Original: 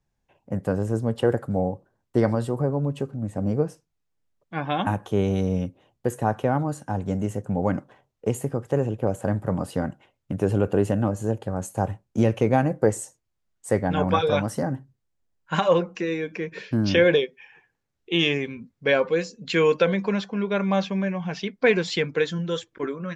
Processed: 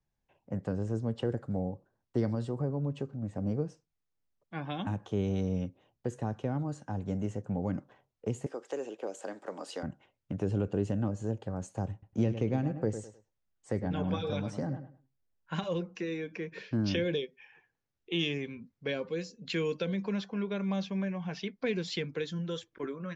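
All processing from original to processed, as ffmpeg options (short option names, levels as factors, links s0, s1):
-filter_complex "[0:a]asettb=1/sr,asplit=3[s0][s1][s2];[s0]atrim=end=8.464[s3];[s1]atrim=start=8.46:end=9.83,asetpts=PTS-STARTPTS,afade=t=in:d=0.004:c=qsin,afade=t=out:st=1.366:d=0.004:c=qsin,highpass=f=330:w=0.5412,highpass=f=330:w=1.3066,highshelf=f=2300:g=10[s4];[s2]atrim=start=9.826[s5];[s3][s4]acrossfade=d=0.004:c1=hsin:c2=qsin[s6];[s6][s5]acrossfade=d=0.004:c1=qsin:c2=hsin,asettb=1/sr,asplit=3[s7][s8][s9];[s7]atrim=end=11.924[s10];[s8]atrim=start=11.92:end=15.64,asetpts=PTS-STARTPTS,afade=t=in:d=0.004:c=qsin,afade=t=out:st=3.716:d=0.004:c=qsin,highshelf=f=8400:g=-9.5,asplit=2[s11][s12];[s12]adelay=103,lowpass=f=3700:p=1,volume=0.282,asplit=2[s13][s14];[s14]adelay=103,lowpass=f=3700:p=1,volume=0.23,asplit=2[s15][s16];[s16]adelay=103,lowpass=f=3700:p=1,volume=0.23[s17];[s11][s13][s15][s17]amix=inputs=4:normalize=0,atrim=end_sample=164052[s18];[s9]atrim=start=15.636[s19];[s10][s18]acrossfade=d=0.004:c1=hsin:c2=qsin[s20];[s20][s19]acrossfade=d=0.004:c1=qsin:c2=hsin,lowpass=f=6900:w=0.5412,lowpass=f=6900:w=1.3066,acrossover=split=380|3000[s21][s22][s23];[s22]acompressor=threshold=0.0251:ratio=6[s24];[s21][s24][s23]amix=inputs=3:normalize=0,volume=0.447"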